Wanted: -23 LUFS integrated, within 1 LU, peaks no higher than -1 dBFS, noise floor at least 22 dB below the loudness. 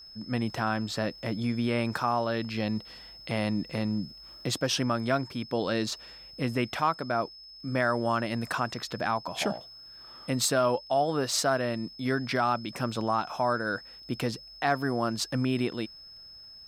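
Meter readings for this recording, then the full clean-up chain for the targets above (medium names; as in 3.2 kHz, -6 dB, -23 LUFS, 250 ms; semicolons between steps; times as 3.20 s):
tick rate 27 per s; steady tone 5.2 kHz; tone level -46 dBFS; loudness -29.5 LUFS; peak level -11.0 dBFS; loudness target -23.0 LUFS
-> de-click; band-stop 5.2 kHz, Q 30; trim +6.5 dB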